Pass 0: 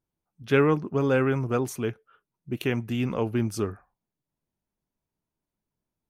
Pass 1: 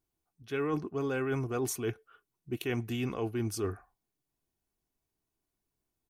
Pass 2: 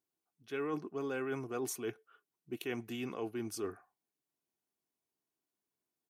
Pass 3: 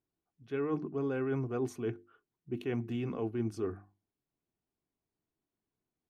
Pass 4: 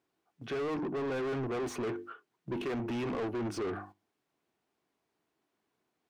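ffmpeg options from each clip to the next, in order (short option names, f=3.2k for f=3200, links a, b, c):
-af "highshelf=f=3.9k:g=5.5,aecho=1:1:2.7:0.42,areverse,acompressor=threshold=-28dB:ratio=10,areverse,volume=-1dB"
-af "highpass=200,volume=-4.5dB"
-af "aemphasis=mode=reproduction:type=riaa,bandreject=f=50:t=h:w=6,bandreject=f=100:t=h:w=6,bandreject=f=150:t=h:w=6,bandreject=f=200:t=h:w=6,bandreject=f=250:t=h:w=6,bandreject=f=300:t=h:w=6,bandreject=f=350:t=h:w=6"
-filter_complex "[0:a]agate=range=-9dB:threshold=-58dB:ratio=16:detection=peak,asplit=2[a][b];[b]highpass=f=720:p=1,volume=31dB,asoftclip=type=tanh:threshold=-22.5dB[c];[a][c]amix=inputs=2:normalize=0,lowpass=f=2.1k:p=1,volume=-6dB,acompressor=threshold=-41dB:ratio=1.5"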